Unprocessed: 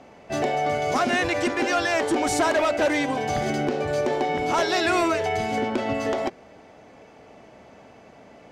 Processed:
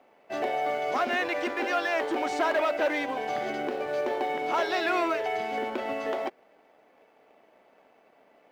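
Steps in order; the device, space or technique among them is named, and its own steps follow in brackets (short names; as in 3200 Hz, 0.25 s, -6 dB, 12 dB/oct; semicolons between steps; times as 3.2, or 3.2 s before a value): phone line with mismatched companding (BPF 350–3500 Hz; G.711 law mismatch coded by A); gain -3 dB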